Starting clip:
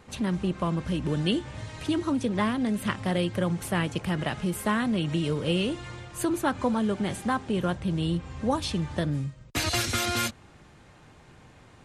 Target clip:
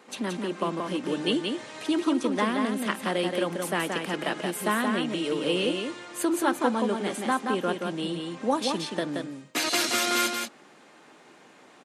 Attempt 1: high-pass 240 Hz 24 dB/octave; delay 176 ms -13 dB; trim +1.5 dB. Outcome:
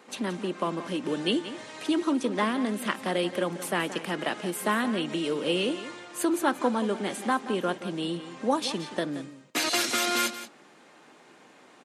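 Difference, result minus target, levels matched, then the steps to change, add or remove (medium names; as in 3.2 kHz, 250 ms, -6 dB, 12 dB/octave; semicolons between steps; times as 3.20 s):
echo-to-direct -8.5 dB
change: delay 176 ms -4.5 dB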